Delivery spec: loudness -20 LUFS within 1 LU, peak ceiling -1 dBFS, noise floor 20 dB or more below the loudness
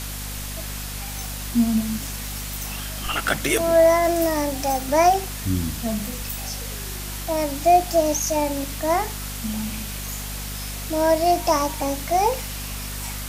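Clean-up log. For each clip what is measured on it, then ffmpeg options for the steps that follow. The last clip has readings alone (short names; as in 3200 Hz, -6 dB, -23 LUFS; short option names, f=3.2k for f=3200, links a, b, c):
hum 50 Hz; harmonics up to 250 Hz; hum level -31 dBFS; noise floor -31 dBFS; noise floor target -43 dBFS; loudness -23.0 LUFS; peak -5.5 dBFS; loudness target -20.0 LUFS
-> -af "bandreject=f=50:t=h:w=4,bandreject=f=100:t=h:w=4,bandreject=f=150:t=h:w=4,bandreject=f=200:t=h:w=4,bandreject=f=250:t=h:w=4"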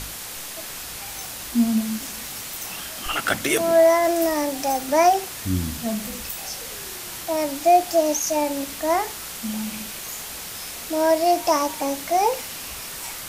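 hum none; noise floor -35 dBFS; noise floor target -43 dBFS
-> -af "afftdn=nr=8:nf=-35"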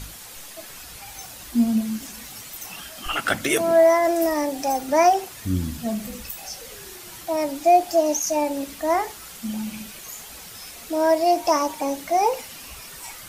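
noise floor -41 dBFS; noise floor target -42 dBFS
-> -af "afftdn=nr=6:nf=-41"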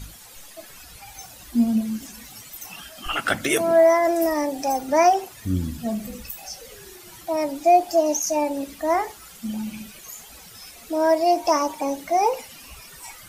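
noise floor -45 dBFS; loudness -22.0 LUFS; peak -6.0 dBFS; loudness target -20.0 LUFS
-> -af "volume=2dB"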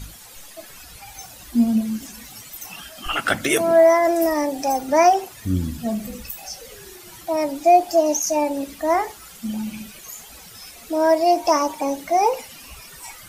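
loudness -20.0 LUFS; peak -4.0 dBFS; noise floor -43 dBFS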